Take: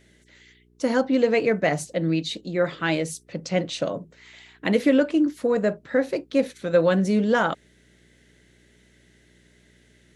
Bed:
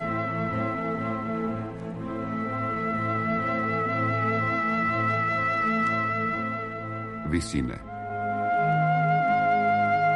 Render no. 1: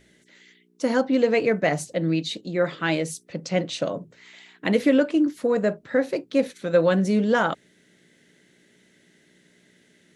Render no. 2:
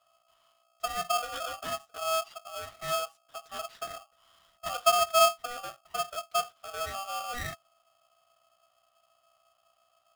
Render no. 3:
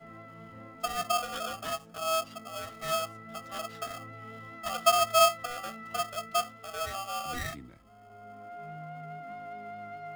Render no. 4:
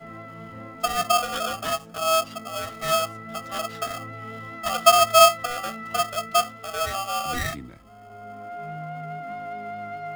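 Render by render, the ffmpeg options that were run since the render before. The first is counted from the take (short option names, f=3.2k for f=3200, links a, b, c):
-af "bandreject=f=60:t=h:w=4,bandreject=f=120:t=h:w=4"
-filter_complex "[0:a]asplit=3[a][b][c];[a]bandpass=f=300:t=q:w=8,volume=0dB[d];[b]bandpass=f=870:t=q:w=8,volume=-6dB[e];[c]bandpass=f=2.24k:t=q:w=8,volume=-9dB[f];[d][e][f]amix=inputs=3:normalize=0,aeval=exprs='val(0)*sgn(sin(2*PI*970*n/s))':c=same"
-filter_complex "[1:a]volume=-20dB[a];[0:a][a]amix=inputs=2:normalize=0"
-af "volume=8dB"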